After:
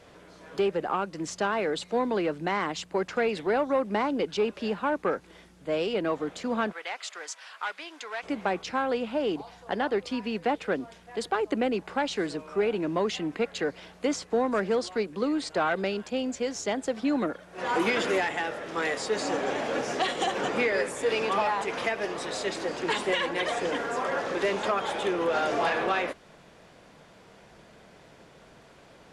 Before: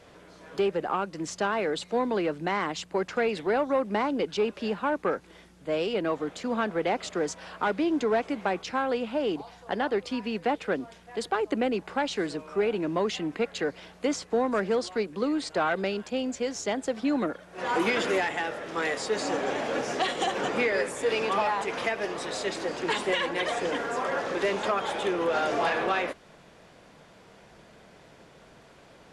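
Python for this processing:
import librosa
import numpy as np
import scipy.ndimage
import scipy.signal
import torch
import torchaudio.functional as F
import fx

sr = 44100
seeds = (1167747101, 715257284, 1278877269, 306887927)

y = fx.highpass(x, sr, hz=1300.0, slope=12, at=(6.71, 8.22), fade=0.02)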